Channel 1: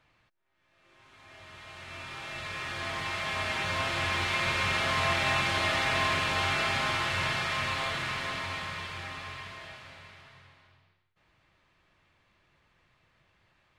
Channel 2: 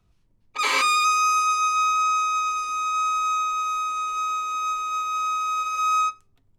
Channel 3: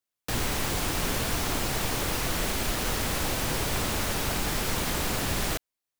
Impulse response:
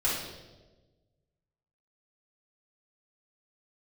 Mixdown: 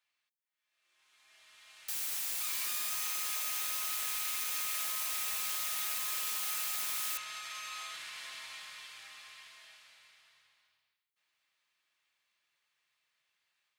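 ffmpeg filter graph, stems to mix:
-filter_complex "[0:a]alimiter=level_in=1.06:limit=0.0631:level=0:latency=1:release=79,volume=0.944,volume=0.596[s0];[1:a]acompressor=threshold=0.0251:ratio=6,adelay=1850,volume=0.501[s1];[2:a]adelay=1600,volume=0.376[s2];[s0][s1][s2]amix=inputs=3:normalize=0,aderivative,dynaudnorm=f=570:g=3:m=1.58"

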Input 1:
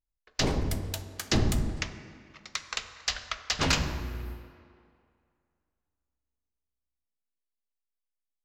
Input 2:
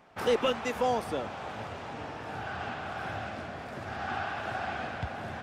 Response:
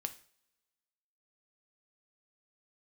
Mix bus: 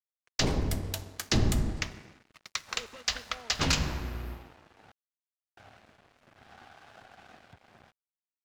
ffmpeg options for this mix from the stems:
-filter_complex "[0:a]volume=1.06[s0];[1:a]alimiter=level_in=1.19:limit=0.0631:level=0:latency=1:release=132,volume=0.841,adelay=2500,volume=0.211,asplit=3[s1][s2][s3];[s1]atrim=end=4.92,asetpts=PTS-STARTPTS,afade=t=out:st=4.916:d=0.004:c=hsin[s4];[s2]atrim=start=4.92:end=5.57,asetpts=PTS-STARTPTS,volume=0[s5];[s3]atrim=start=5.57,asetpts=PTS-STARTPTS,afade=t=in:d=0.004:c=hsin[s6];[s4][s5][s6]concat=n=3:v=0:a=1,asplit=2[s7][s8];[s8]volume=0.224[s9];[2:a]atrim=start_sample=2205[s10];[s9][s10]afir=irnorm=-1:irlink=0[s11];[s0][s7][s11]amix=inputs=3:normalize=0,acrossover=split=230|3000[s12][s13][s14];[s13]acompressor=threshold=0.0398:ratio=6[s15];[s12][s15][s14]amix=inputs=3:normalize=0,aeval=exprs='sgn(val(0))*max(abs(val(0))-0.00299,0)':c=same"

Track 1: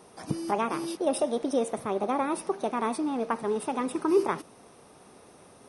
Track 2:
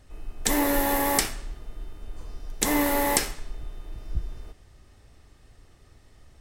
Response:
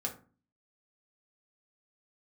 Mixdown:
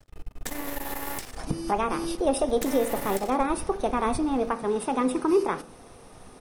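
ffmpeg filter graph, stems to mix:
-filter_complex "[0:a]adelay=1200,volume=1.06,asplit=2[s0][s1];[s1]volume=0.398[s2];[1:a]acompressor=threshold=0.0398:ratio=5,aeval=exprs='max(val(0),0)':c=same,volume=1.12,asplit=2[s3][s4];[s4]volume=0.168[s5];[2:a]atrim=start_sample=2205[s6];[s2][s5]amix=inputs=2:normalize=0[s7];[s7][s6]afir=irnorm=-1:irlink=0[s8];[s0][s3][s8]amix=inputs=3:normalize=0,alimiter=limit=0.211:level=0:latency=1:release=238"

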